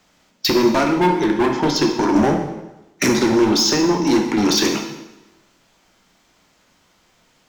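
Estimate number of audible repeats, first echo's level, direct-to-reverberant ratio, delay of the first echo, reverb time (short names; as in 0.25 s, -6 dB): none, none, 3.0 dB, none, 1.0 s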